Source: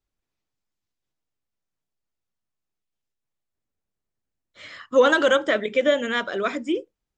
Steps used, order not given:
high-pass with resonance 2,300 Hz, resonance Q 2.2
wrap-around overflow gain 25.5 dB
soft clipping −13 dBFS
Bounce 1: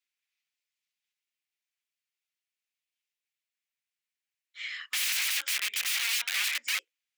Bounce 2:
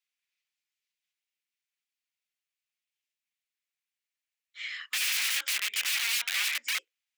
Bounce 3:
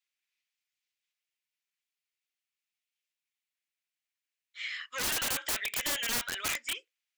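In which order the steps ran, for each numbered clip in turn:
wrap-around overflow, then soft clipping, then high-pass with resonance
soft clipping, then wrap-around overflow, then high-pass with resonance
soft clipping, then high-pass with resonance, then wrap-around overflow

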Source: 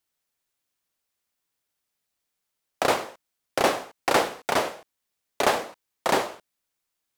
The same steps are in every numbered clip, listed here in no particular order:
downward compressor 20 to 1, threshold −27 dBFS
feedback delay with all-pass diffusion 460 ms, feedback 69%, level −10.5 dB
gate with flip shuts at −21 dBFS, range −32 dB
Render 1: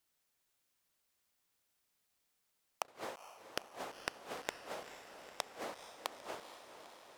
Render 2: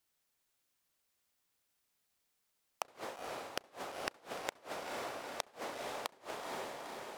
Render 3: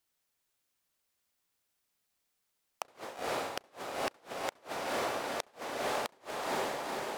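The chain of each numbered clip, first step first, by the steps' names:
downward compressor, then gate with flip, then feedback delay with all-pass diffusion
downward compressor, then feedback delay with all-pass diffusion, then gate with flip
feedback delay with all-pass diffusion, then downward compressor, then gate with flip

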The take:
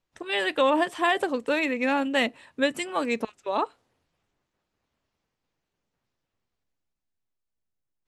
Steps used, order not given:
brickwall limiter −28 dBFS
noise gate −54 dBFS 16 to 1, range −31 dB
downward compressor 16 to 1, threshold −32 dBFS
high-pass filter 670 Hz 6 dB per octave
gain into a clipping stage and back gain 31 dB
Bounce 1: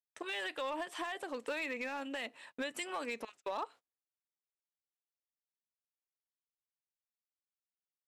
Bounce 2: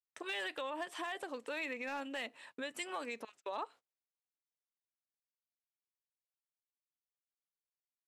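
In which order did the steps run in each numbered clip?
high-pass filter, then downward compressor, then brickwall limiter, then noise gate, then gain into a clipping stage and back
downward compressor, then brickwall limiter, then noise gate, then high-pass filter, then gain into a clipping stage and back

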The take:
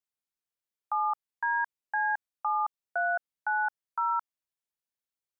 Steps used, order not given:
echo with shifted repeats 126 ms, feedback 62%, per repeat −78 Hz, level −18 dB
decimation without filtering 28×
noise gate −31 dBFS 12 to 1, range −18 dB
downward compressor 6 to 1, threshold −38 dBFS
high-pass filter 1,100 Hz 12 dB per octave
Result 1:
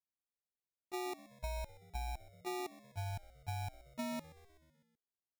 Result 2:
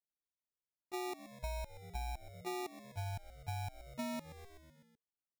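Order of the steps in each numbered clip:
high-pass filter, then decimation without filtering, then noise gate, then downward compressor, then echo with shifted repeats
high-pass filter, then decimation without filtering, then noise gate, then echo with shifted repeats, then downward compressor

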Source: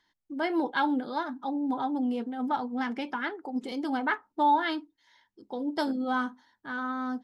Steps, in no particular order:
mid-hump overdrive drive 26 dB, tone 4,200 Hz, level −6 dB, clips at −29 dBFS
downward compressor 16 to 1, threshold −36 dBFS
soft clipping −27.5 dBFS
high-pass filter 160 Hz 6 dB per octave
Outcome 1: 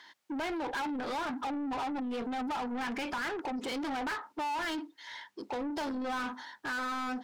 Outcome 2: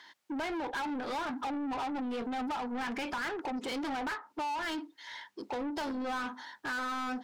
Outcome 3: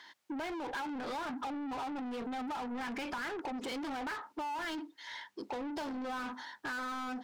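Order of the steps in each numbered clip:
high-pass filter, then soft clipping, then downward compressor, then mid-hump overdrive
high-pass filter, then downward compressor, then soft clipping, then mid-hump overdrive
soft clipping, then high-pass filter, then mid-hump overdrive, then downward compressor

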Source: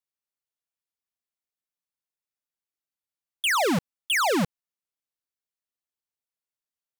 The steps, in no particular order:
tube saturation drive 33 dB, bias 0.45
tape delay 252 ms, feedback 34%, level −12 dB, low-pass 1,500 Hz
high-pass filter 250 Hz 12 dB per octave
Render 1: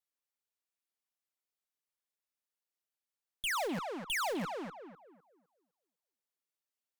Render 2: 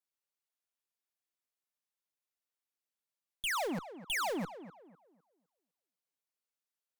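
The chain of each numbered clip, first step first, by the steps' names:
tape delay, then high-pass filter, then tube saturation
high-pass filter, then tube saturation, then tape delay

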